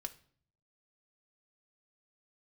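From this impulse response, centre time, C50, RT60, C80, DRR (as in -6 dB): 4 ms, 16.5 dB, no single decay rate, 21.5 dB, 5.5 dB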